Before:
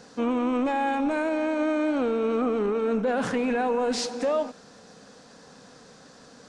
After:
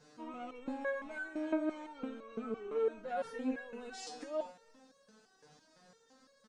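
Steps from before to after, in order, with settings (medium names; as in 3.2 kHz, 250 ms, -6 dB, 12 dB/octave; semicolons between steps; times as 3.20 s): speakerphone echo 340 ms, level -18 dB; resonator arpeggio 5.9 Hz 150–550 Hz; trim -1 dB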